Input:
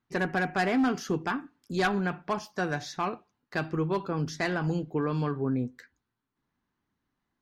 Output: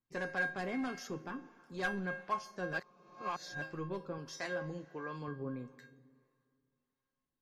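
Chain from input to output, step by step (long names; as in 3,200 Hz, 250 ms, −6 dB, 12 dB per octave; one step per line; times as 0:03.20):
tuned comb filter 540 Hz, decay 0.39 s, mix 90%
0:01.07–0:01.83: high-shelf EQ 4,000 Hz −8.5 dB
convolution reverb RT60 2.2 s, pre-delay 120 ms, DRR 18 dB
two-band tremolo in antiphase 1.5 Hz, depth 50%, crossover 510 Hz
0:02.73–0:03.62: reverse
0:04.18–0:05.28: low-shelf EQ 140 Hz −11 dB
level +9 dB
MP3 56 kbit/s 48,000 Hz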